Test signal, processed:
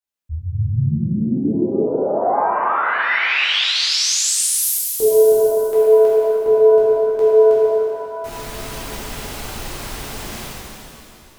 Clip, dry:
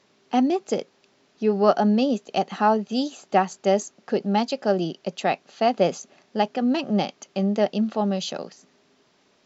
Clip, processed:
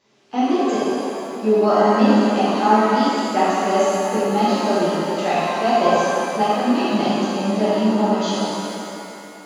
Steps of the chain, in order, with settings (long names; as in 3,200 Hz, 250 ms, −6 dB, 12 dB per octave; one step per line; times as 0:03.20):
reverb with rising layers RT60 2.6 s, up +7 semitones, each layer −8 dB, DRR −10.5 dB
level −6 dB